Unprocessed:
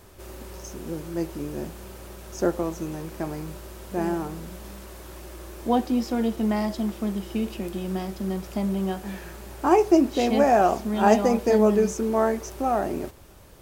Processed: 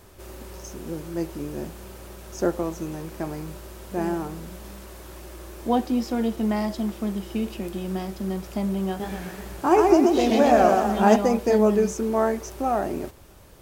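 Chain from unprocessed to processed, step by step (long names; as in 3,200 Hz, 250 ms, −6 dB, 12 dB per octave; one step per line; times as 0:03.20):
0:08.87–0:11.16: feedback echo with a swinging delay time 123 ms, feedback 48%, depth 136 cents, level −3 dB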